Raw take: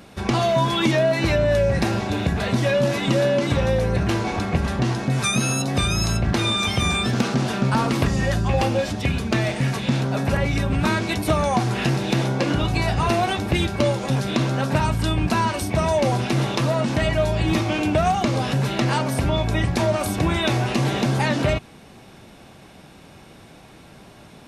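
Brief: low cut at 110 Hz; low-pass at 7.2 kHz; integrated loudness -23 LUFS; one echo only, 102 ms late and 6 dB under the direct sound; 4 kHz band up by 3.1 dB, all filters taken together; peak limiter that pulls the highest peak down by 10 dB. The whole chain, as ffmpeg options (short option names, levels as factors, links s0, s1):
-af "highpass=110,lowpass=7200,equalizer=f=4000:t=o:g=4,alimiter=limit=0.178:level=0:latency=1,aecho=1:1:102:0.501"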